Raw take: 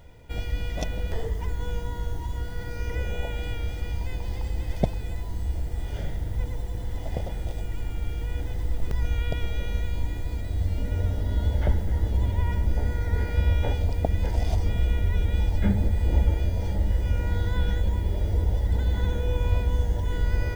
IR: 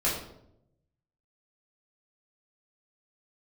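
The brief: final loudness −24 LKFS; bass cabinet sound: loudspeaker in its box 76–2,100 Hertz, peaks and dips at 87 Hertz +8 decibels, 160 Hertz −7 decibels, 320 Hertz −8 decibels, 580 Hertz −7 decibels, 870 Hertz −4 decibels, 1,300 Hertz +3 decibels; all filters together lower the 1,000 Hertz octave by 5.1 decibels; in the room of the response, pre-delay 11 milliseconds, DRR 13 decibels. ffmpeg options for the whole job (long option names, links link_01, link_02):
-filter_complex "[0:a]equalizer=frequency=1000:width_type=o:gain=-3.5,asplit=2[link_01][link_02];[1:a]atrim=start_sample=2205,adelay=11[link_03];[link_02][link_03]afir=irnorm=-1:irlink=0,volume=-23dB[link_04];[link_01][link_04]amix=inputs=2:normalize=0,highpass=frequency=76:width=0.5412,highpass=frequency=76:width=1.3066,equalizer=frequency=87:width_type=q:width=4:gain=8,equalizer=frequency=160:width_type=q:width=4:gain=-7,equalizer=frequency=320:width_type=q:width=4:gain=-8,equalizer=frequency=580:width_type=q:width=4:gain=-7,equalizer=frequency=870:width_type=q:width=4:gain=-4,equalizer=frequency=1300:width_type=q:width=4:gain=3,lowpass=frequency=2100:width=0.5412,lowpass=frequency=2100:width=1.3066,volume=3dB"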